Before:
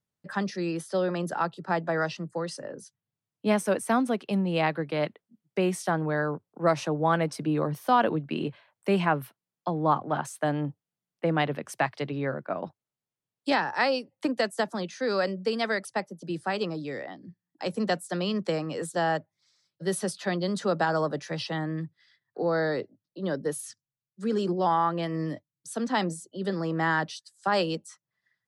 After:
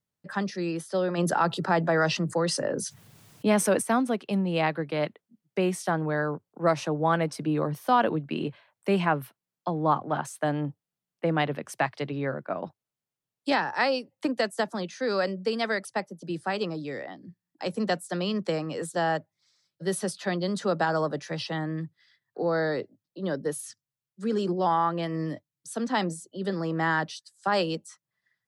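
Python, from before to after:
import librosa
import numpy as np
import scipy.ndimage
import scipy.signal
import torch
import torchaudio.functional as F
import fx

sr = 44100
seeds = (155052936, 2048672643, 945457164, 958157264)

y = fx.env_flatten(x, sr, amount_pct=50, at=(1.17, 3.81), fade=0.02)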